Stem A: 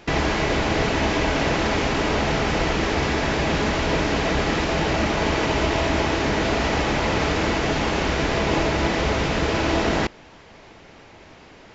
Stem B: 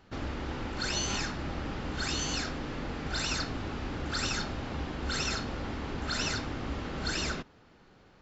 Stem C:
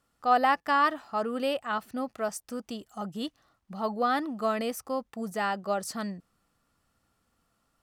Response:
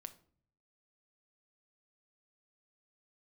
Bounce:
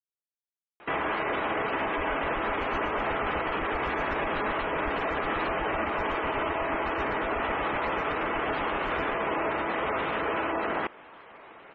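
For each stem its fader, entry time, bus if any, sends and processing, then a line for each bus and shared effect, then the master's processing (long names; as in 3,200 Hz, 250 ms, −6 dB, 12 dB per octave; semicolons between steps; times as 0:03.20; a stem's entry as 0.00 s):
−2.0 dB, 0.80 s, no send, bass and treble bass −11 dB, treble −10 dB; gate on every frequency bin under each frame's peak −20 dB strong; low-shelf EQ 87 Hz −9.5 dB
−11.0 dB, 1.75 s, no send, spectral tilt −4 dB per octave; tremolo with a sine in dB 8 Hz, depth 35 dB
muted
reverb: not used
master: parametric band 1,200 Hz +6.5 dB 0.62 octaves; brickwall limiter −20.5 dBFS, peak gain reduction 8.5 dB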